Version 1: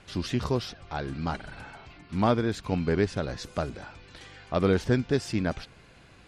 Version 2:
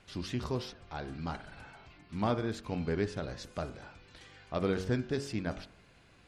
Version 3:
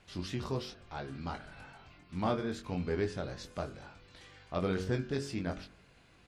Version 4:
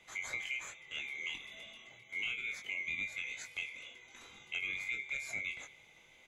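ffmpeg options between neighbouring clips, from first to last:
ffmpeg -i in.wav -af "bandreject=frequency=46.68:width_type=h:width=4,bandreject=frequency=93.36:width_type=h:width=4,bandreject=frequency=140.04:width_type=h:width=4,bandreject=frequency=186.72:width_type=h:width=4,bandreject=frequency=233.4:width_type=h:width=4,bandreject=frequency=280.08:width_type=h:width=4,bandreject=frequency=326.76:width_type=h:width=4,bandreject=frequency=373.44:width_type=h:width=4,bandreject=frequency=420.12:width_type=h:width=4,bandreject=frequency=466.8:width_type=h:width=4,bandreject=frequency=513.48:width_type=h:width=4,bandreject=frequency=560.16:width_type=h:width=4,bandreject=frequency=606.84:width_type=h:width=4,bandreject=frequency=653.52:width_type=h:width=4,bandreject=frequency=700.2:width_type=h:width=4,bandreject=frequency=746.88:width_type=h:width=4,bandreject=frequency=793.56:width_type=h:width=4,bandreject=frequency=840.24:width_type=h:width=4,bandreject=frequency=886.92:width_type=h:width=4,bandreject=frequency=933.6:width_type=h:width=4,bandreject=frequency=980.28:width_type=h:width=4,bandreject=frequency=1026.96:width_type=h:width=4,bandreject=frequency=1073.64:width_type=h:width=4,bandreject=frequency=1120.32:width_type=h:width=4,bandreject=frequency=1167:width_type=h:width=4,bandreject=frequency=1213.68:width_type=h:width=4,bandreject=frequency=1260.36:width_type=h:width=4,bandreject=frequency=1307.04:width_type=h:width=4,bandreject=frequency=1353.72:width_type=h:width=4,bandreject=frequency=1400.4:width_type=h:width=4,bandreject=frequency=1447.08:width_type=h:width=4,bandreject=frequency=1493.76:width_type=h:width=4,bandreject=frequency=1540.44:width_type=h:width=4,bandreject=frequency=1587.12:width_type=h:width=4,bandreject=frequency=1633.8:width_type=h:width=4,bandreject=frequency=1680.48:width_type=h:width=4,bandreject=frequency=1727.16:width_type=h:width=4,bandreject=frequency=1773.84:width_type=h:width=4,volume=-6.5dB" out.wav
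ffmpeg -i in.wav -filter_complex "[0:a]asplit=2[link_01][link_02];[link_02]adelay=22,volume=-5.5dB[link_03];[link_01][link_03]amix=inputs=2:normalize=0,volume=-2dB" out.wav
ffmpeg -i in.wav -filter_complex "[0:a]afftfilt=real='real(if(lt(b,920),b+92*(1-2*mod(floor(b/92),2)),b),0)':imag='imag(if(lt(b,920),b+92*(1-2*mod(floor(b/92),2)),b),0)':win_size=2048:overlap=0.75,acrossover=split=160[link_01][link_02];[link_02]acompressor=threshold=-36dB:ratio=4[link_03];[link_01][link_03]amix=inputs=2:normalize=0" out.wav

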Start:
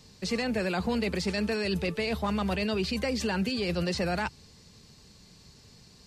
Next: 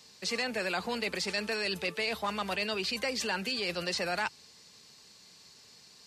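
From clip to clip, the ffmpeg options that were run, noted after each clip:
ffmpeg -i in.wav -af "highpass=frequency=880:poles=1,volume=2dB" out.wav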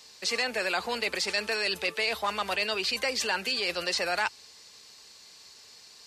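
ffmpeg -i in.wav -af "equalizer=frequency=160:width_type=o:width=1.6:gain=-12,volume=4.5dB" out.wav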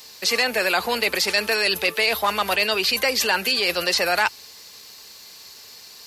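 ffmpeg -i in.wav -af "aexciter=amount=4.7:drive=5.9:freq=11000,volume=8dB" out.wav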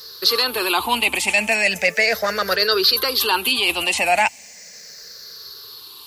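ffmpeg -i in.wav -af "afftfilt=real='re*pow(10,16/40*sin(2*PI*(0.59*log(max(b,1)*sr/1024/100)/log(2)-(-0.37)*(pts-256)/sr)))':imag='im*pow(10,16/40*sin(2*PI*(0.59*log(max(b,1)*sr/1024/100)/log(2)-(-0.37)*(pts-256)/sr)))':win_size=1024:overlap=0.75" out.wav

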